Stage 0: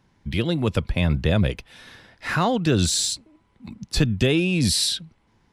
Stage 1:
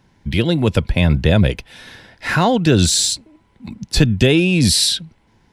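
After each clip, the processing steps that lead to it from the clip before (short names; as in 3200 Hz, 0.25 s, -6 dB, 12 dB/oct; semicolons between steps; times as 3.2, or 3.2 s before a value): notch 1200 Hz, Q 7.6; gain +6.5 dB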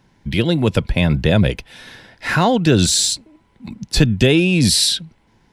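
bell 80 Hz -8.5 dB 0.3 oct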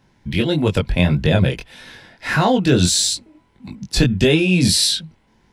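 chorus 1.6 Hz, delay 19.5 ms, depth 3.7 ms; gain +2 dB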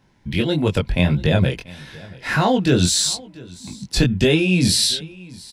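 echo 0.687 s -22 dB; gain -1.5 dB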